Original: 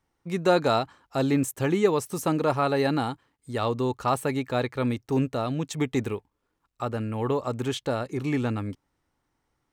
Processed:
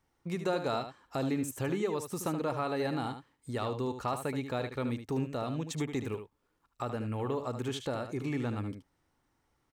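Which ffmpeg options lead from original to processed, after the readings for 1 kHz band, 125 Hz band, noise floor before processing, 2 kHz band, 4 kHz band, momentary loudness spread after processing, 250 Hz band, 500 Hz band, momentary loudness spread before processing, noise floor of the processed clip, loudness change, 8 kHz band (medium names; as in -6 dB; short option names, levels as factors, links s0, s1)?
-8.5 dB, -7.0 dB, -78 dBFS, -8.0 dB, -7.5 dB, 7 LU, -7.5 dB, -8.5 dB, 10 LU, -77 dBFS, -8.0 dB, -6.0 dB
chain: -filter_complex "[0:a]acompressor=threshold=0.0141:ratio=2,asplit=2[s0][s1];[s1]aecho=0:1:75:0.355[s2];[s0][s2]amix=inputs=2:normalize=0"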